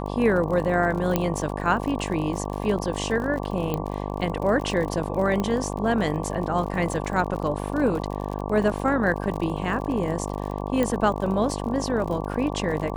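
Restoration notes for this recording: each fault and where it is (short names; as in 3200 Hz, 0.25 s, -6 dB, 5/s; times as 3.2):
buzz 50 Hz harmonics 23 -30 dBFS
crackle 51/s -31 dBFS
1.16 pop -8 dBFS
3.74 pop -13 dBFS
5.4 pop -14 dBFS
10.83 pop -12 dBFS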